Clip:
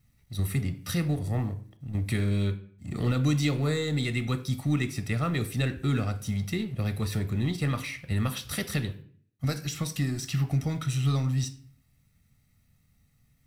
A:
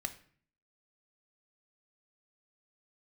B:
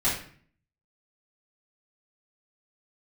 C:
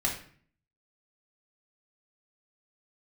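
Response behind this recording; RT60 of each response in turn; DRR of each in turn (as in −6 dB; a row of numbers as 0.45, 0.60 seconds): A; 0.50, 0.50, 0.50 seconds; 8.5, −9.0, −1.0 decibels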